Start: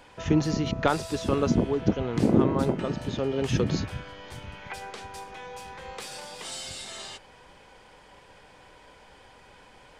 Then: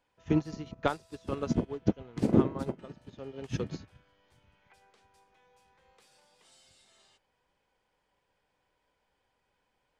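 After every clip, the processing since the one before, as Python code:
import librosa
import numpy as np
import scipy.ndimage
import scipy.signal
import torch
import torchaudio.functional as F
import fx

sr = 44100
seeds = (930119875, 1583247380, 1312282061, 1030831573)

y = fx.upward_expand(x, sr, threshold_db=-33.0, expansion=2.5)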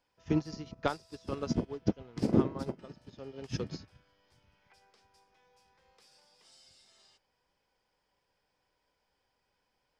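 y = fx.peak_eq(x, sr, hz=5100.0, db=11.0, octaves=0.33)
y = y * 10.0 ** (-2.5 / 20.0)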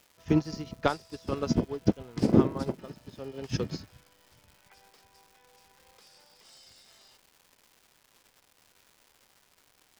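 y = fx.dmg_crackle(x, sr, seeds[0], per_s=400.0, level_db=-52.0)
y = y * 10.0 ** (5.0 / 20.0)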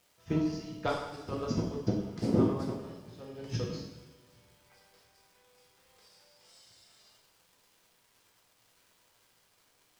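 y = fx.rev_double_slope(x, sr, seeds[1], early_s=0.86, late_s=2.5, knee_db=-18, drr_db=-2.5)
y = y * 10.0 ** (-8.5 / 20.0)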